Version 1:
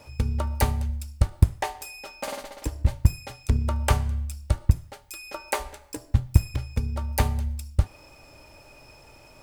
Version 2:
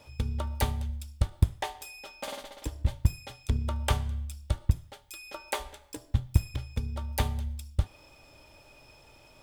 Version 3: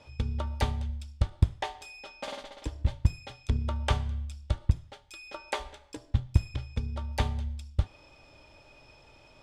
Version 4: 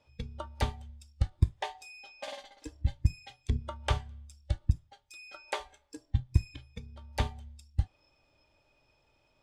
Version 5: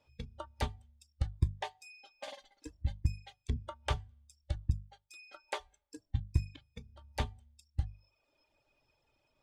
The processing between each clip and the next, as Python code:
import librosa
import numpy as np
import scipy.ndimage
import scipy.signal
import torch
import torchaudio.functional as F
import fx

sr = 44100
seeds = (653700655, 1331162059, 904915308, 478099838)

y1 = fx.peak_eq(x, sr, hz=3400.0, db=9.0, octaves=0.33)
y1 = F.gain(torch.from_numpy(y1), -5.5).numpy()
y2 = scipy.signal.sosfilt(scipy.signal.butter(2, 5900.0, 'lowpass', fs=sr, output='sos'), y1)
y3 = fx.noise_reduce_blind(y2, sr, reduce_db=12)
y3 = F.gain(torch.from_numpy(y3), -2.0).numpy()
y4 = fx.dereverb_blind(y3, sr, rt60_s=0.82)
y4 = fx.hum_notches(y4, sr, base_hz=50, count=4)
y4 = F.gain(torch.from_numpy(y4), -3.5).numpy()